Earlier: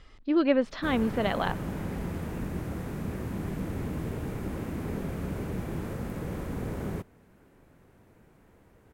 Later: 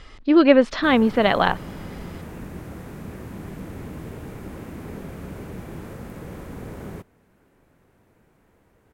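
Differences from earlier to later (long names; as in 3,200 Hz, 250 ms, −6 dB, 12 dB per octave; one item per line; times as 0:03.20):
speech +11.0 dB
master: add low-shelf EQ 360 Hz −3 dB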